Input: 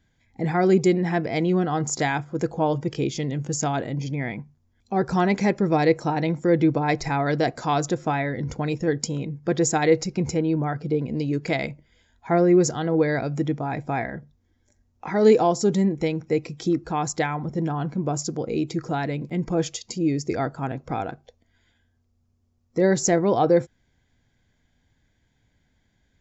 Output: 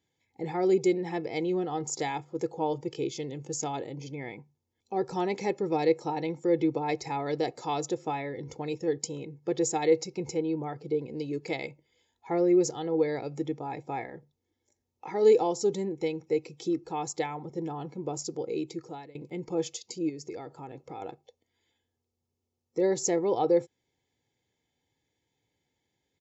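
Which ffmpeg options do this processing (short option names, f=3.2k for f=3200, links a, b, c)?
-filter_complex "[0:a]asettb=1/sr,asplit=3[a][b][c];[a]atrim=end=20.094[d];[b]atrim=start=20.09:end=21.02,asetpts=PTS-STARTPTS,afade=t=in:d=0.004:c=qsin,afade=t=out:st=0.926:d=0.004:c=qsin,acompressor=threshold=-28dB:ratio=6:attack=3.2:release=140:knee=1:detection=peak[e];[c]atrim=start=21.016[f];[d][e]acrossfade=d=0.004:c1=hsin:c2=qsin[g];[g][f]acrossfade=d=0.004:c1=qsin:c2=hsin,asplit=2[h][i];[h]atrim=end=19.15,asetpts=PTS-STARTPTS,afade=t=out:st=18.42:d=0.73:c=qsin:silence=0.0749894[j];[i]atrim=start=19.15,asetpts=PTS-STARTPTS,afade=t=in:d=0.004:c=hsin:silence=0.0749894[k];[j][k]concat=n=2:v=0:a=1,highpass=180,equalizer=f=1.5k:t=o:w=0.41:g=-14,aecho=1:1:2.3:0.56,volume=-7dB"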